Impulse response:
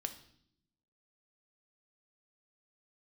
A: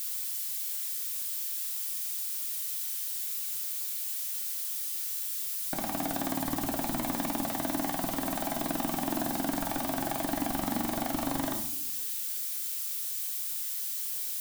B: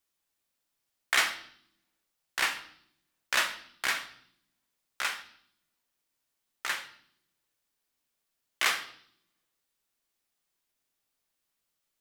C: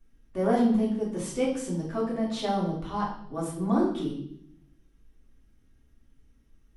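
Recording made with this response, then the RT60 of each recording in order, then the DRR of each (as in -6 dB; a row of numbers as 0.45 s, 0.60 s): B; no single decay rate, no single decay rate, 0.65 s; 3.0 dB, 7.0 dB, -5.5 dB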